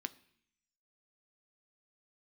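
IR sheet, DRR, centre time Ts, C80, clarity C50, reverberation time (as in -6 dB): 11.0 dB, 3 ms, 22.5 dB, 19.5 dB, 0.65 s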